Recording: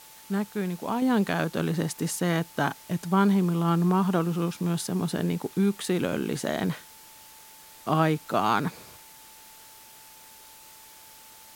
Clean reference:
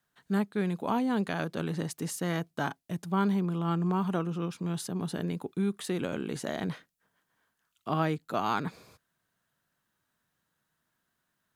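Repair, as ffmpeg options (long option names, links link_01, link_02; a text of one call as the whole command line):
ffmpeg -i in.wav -af "bandreject=frequency=880:width=30,afwtdn=0.0035,asetnsamples=nb_out_samples=441:pad=0,asendcmd='1.02 volume volume -5.5dB',volume=0dB" out.wav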